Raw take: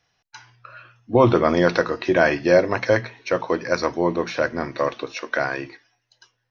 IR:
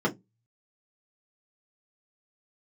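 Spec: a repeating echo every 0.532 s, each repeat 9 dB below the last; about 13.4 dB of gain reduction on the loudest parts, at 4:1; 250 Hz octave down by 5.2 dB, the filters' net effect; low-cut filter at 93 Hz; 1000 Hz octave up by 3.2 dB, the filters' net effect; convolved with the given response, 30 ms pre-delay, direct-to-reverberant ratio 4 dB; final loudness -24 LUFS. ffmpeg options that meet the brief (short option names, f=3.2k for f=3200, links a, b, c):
-filter_complex "[0:a]highpass=93,equalizer=f=250:t=o:g=-8.5,equalizer=f=1k:t=o:g=4.5,acompressor=threshold=-27dB:ratio=4,aecho=1:1:532|1064|1596|2128:0.355|0.124|0.0435|0.0152,asplit=2[a][b];[1:a]atrim=start_sample=2205,adelay=30[c];[b][c]afir=irnorm=-1:irlink=0,volume=-15.5dB[d];[a][d]amix=inputs=2:normalize=0,volume=4dB"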